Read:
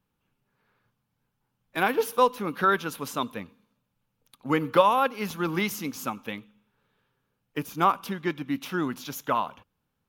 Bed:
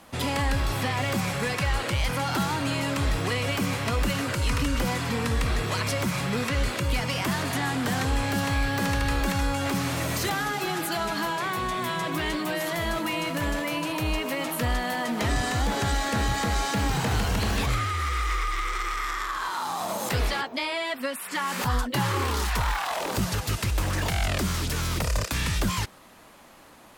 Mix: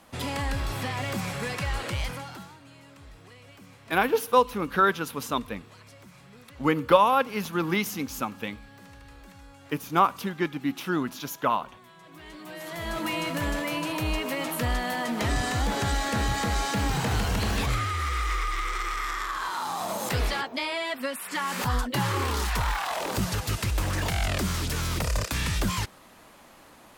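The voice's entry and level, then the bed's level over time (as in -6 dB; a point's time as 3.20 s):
2.15 s, +1.0 dB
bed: 2.02 s -4 dB
2.60 s -23.5 dB
11.96 s -23.5 dB
13.06 s -1 dB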